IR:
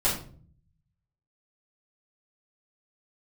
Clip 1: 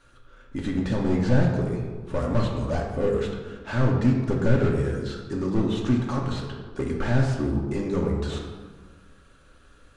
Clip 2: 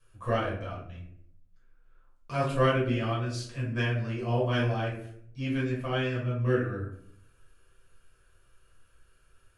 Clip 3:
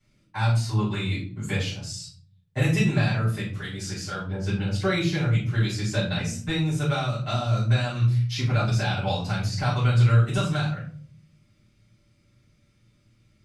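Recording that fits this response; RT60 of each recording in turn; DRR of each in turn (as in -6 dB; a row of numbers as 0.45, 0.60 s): 3; 1.5, 0.65, 0.50 s; -1.0, -7.0, -10.0 dB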